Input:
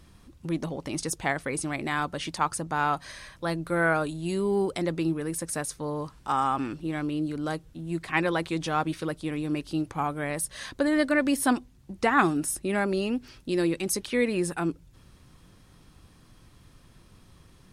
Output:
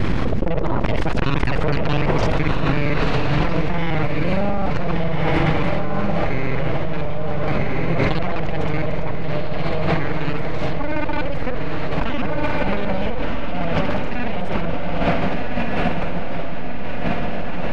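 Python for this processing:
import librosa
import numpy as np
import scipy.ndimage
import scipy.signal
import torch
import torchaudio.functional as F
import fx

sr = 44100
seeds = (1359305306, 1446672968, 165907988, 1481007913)

p1 = fx.local_reverse(x, sr, ms=42.0)
p2 = fx.peak_eq(p1, sr, hz=2200.0, db=6.5, octaves=0.43)
p3 = np.abs(p2)
p4 = fx.spacing_loss(p3, sr, db_at_10k=33)
p5 = p4 + fx.echo_diffused(p4, sr, ms=1463, feedback_pct=62, wet_db=-4, dry=0)
y = fx.env_flatten(p5, sr, amount_pct=100)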